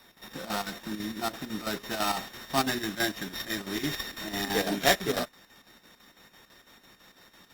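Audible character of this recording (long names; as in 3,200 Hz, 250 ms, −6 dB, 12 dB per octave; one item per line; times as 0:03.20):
a buzz of ramps at a fixed pitch in blocks of 8 samples
chopped level 6 Hz, depth 60%, duty 70%
aliases and images of a low sample rate 9,200 Hz, jitter 0%
Opus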